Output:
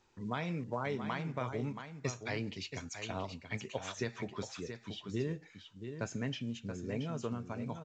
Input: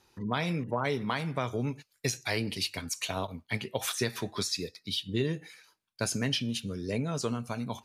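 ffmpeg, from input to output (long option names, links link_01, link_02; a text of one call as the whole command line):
ffmpeg -i in.wav -af "asetnsamples=nb_out_samples=441:pad=0,asendcmd='4.16 equalizer g -14.5',equalizer=frequency=4600:width=1.2:gain=-8,aecho=1:1:677:0.376,volume=-6dB" -ar 16000 -c:a pcm_mulaw out.wav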